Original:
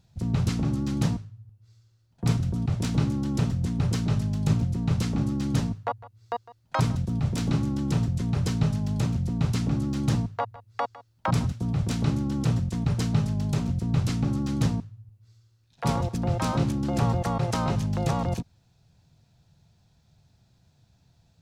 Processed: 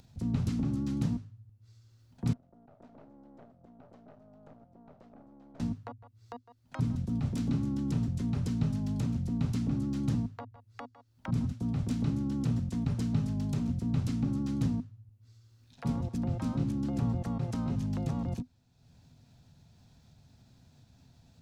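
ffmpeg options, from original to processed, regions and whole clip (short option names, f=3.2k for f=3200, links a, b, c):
-filter_complex "[0:a]asettb=1/sr,asplit=3[a][b][c];[a]atrim=end=2.334[d];[b]atrim=start=2.33:end=5.6,asetpts=PTS-STARTPTS,afade=t=in:d=0.004:c=qsin,afade=t=out:st=3.266:d=0.004:c=qsin,bandpass=f=650:t=q:w=5.5,aeval=exprs='(tanh(112*val(0)+0.8)-tanh(0.8))/112':c=same[e];[c]atrim=start=5.596[f];[d][e]acrossfade=d=0.004:c1=hsin:c2=qsin[g];[g][f]acrossfade=d=0.004:c1=qsin:c2=hsin,acrossover=split=330[h][i];[i]acompressor=threshold=-38dB:ratio=6[j];[h][j]amix=inputs=2:normalize=0,equalizer=f=250:t=o:w=0.24:g=11.5,acompressor=mode=upward:threshold=-43dB:ratio=2.5,volume=-6.5dB"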